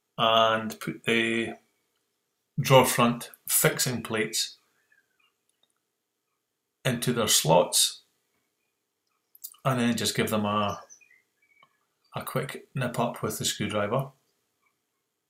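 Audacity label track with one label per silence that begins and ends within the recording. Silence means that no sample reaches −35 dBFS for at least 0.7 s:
1.530000	2.580000	silence
4.480000	6.850000	silence
7.940000	9.350000	silence
10.790000	12.150000	silence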